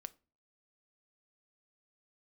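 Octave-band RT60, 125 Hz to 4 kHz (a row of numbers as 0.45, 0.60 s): 0.50, 0.45, 0.40, 0.30, 0.30, 0.25 s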